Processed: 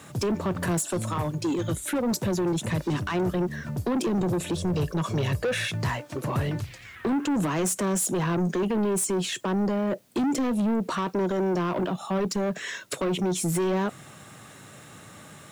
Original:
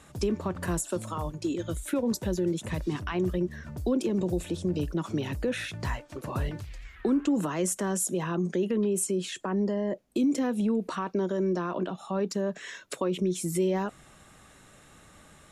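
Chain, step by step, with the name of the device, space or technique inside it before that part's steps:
high-pass filter 98 Hz 24 dB per octave
0:04.57–0:05.71: comb filter 1.8 ms, depth 60%
open-reel tape (soft clipping −30 dBFS, distortion −9 dB; parametric band 120 Hz +4.5 dB 0.84 octaves; white noise bed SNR 38 dB)
level +7.5 dB

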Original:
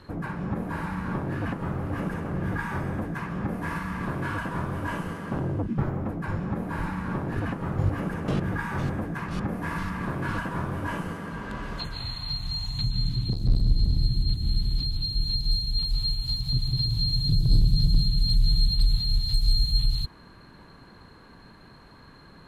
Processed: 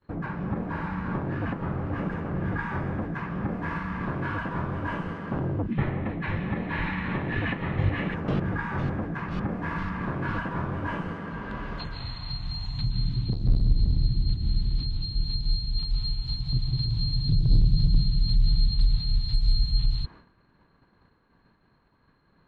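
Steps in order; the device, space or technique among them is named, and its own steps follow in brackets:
hearing-loss simulation (low-pass filter 3,300 Hz 12 dB per octave; downward expander −40 dBFS)
gain on a spectral selection 0:05.72–0:08.14, 1,700–4,300 Hz +12 dB

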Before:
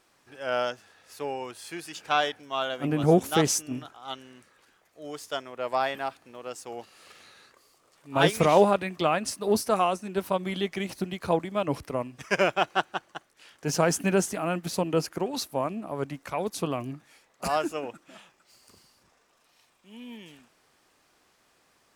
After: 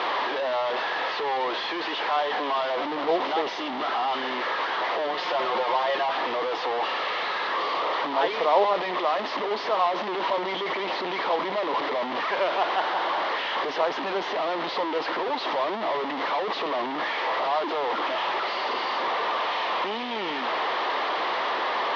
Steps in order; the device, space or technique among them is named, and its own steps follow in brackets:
digital answering machine (band-pass filter 350–3,100 Hz; linear delta modulator 32 kbit/s, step −18.5 dBFS; loudspeaker in its box 440–3,400 Hz, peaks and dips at 980 Hz +5 dB, 1,500 Hz −7 dB, 2,500 Hz −8 dB)
0:05.07–0:06.06: comb filter 5.6 ms, depth 65%

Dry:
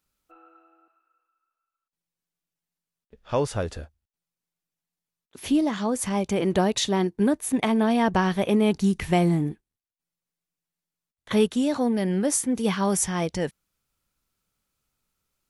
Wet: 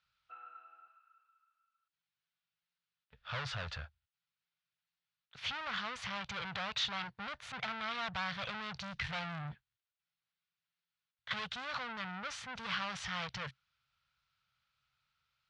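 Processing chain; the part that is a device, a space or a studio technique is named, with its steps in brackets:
scooped metal amplifier (tube saturation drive 34 dB, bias 0.5; loudspeaker in its box 81–4,100 Hz, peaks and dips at 130 Hz +8 dB, 370 Hz −9 dB, 1,400 Hz +6 dB; guitar amp tone stack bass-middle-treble 10-0-10)
level +8 dB

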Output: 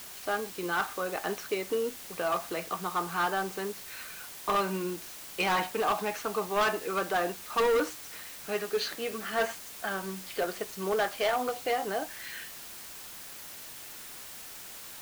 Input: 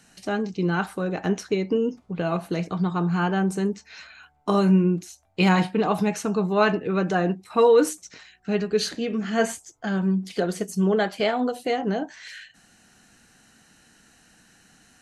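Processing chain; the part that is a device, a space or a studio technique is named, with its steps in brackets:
drive-through speaker (band-pass filter 530–3,700 Hz; parametric band 1,200 Hz +5 dB 0.26 octaves; hard clipping −21.5 dBFS, distortion −9 dB; white noise bed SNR 12 dB)
level −1 dB

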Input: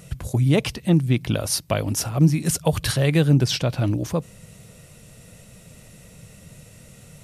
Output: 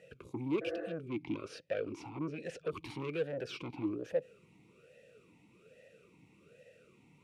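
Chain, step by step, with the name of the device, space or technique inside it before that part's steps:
talk box (tube saturation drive 22 dB, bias 0.4; formant filter swept between two vowels e-u 1.2 Hz)
0:00.65–0:00.89: healed spectral selection 240–2,200 Hz after
0:01.08–0:02.71: low-pass filter 7,400 Hz 12 dB per octave
level +3 dB

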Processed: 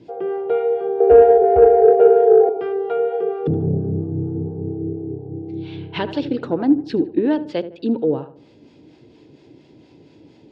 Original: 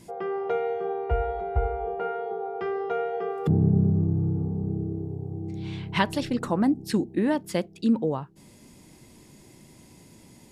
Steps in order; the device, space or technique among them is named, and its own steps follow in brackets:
0:01.00–0:02.49: flat-topped bell 530 Hz +14.5 dB 1.1 octaves
tape delay 76 ms, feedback 39%, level −12 dB, low-pass 2,100 Hz
guitar amplifier with harmonic tremolo (two-band tremolo in antiphase 4.3 Hz, depth 50%, crossover 560 Hz; soft clipping −12 dBFS, distortion −19 dB; loudspeaker in its box 94–4,100 Hz, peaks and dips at 200 Hz −9 dB, 300 Hz +8 dB, 450 Hz +7 dB, 1,100 Hz −8 dB, 2,000 Hz −7 dB)
level +5 dB

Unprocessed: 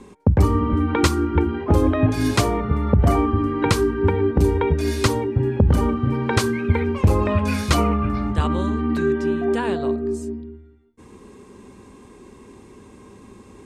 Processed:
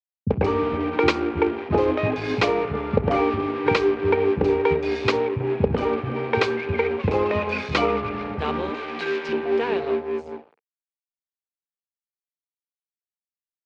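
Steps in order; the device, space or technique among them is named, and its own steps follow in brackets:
blown loudspeaker (dead-zone distortion −31 dBFS; loudspeaker in its box 140–4,600 Hz, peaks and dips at 450 Hz +9 dB, 810 Hz +4 dB, 2,400 Hz +8 dB)
0:08.70–0:09.29: spectral tilt +4 dB per octave
multiband delay without the direct sound lows, highs 40 ms, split 220 Hz
level −1 dB

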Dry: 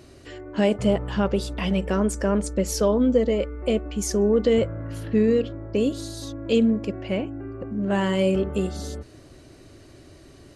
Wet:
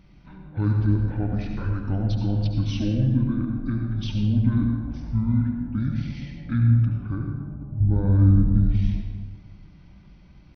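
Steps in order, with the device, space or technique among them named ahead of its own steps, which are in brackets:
0:07.80–0:08.69: spectral tilt −4 dB per octave
monster voice (pitch shifter −11.5 semitones; low-shelf EQ 200 Hz +7.5 dB; convolution reverb RT60 1.4 s, pre-delay 67 ms, DRR 2 dB)
level −8.5 dB

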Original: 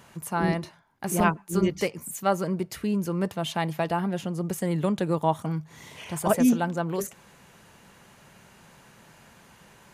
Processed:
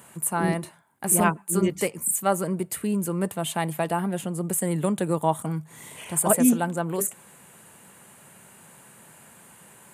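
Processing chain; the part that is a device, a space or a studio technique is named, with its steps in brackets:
budget condenser microphone (high-pass filter 110 Hz; high shelf with overshoot 6,900 Hz +7.5 dB, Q 3)
level +1 dB

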